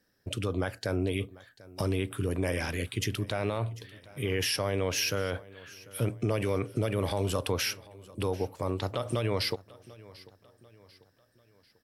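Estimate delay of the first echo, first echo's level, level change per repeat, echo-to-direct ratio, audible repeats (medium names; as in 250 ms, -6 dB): 743 ms, -21.0 dB, -7.0 dB, -20.0 dB, 3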